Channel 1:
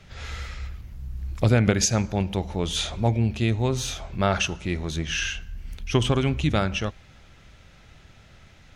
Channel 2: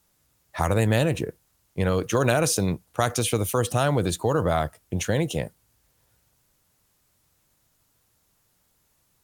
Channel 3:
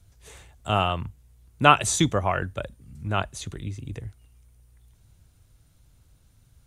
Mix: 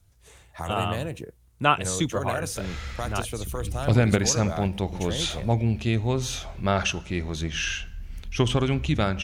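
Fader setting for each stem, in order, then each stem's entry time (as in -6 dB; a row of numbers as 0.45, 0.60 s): -1.0, -9.5, -4.5 dB; 2.45, 0.00, 0.00 s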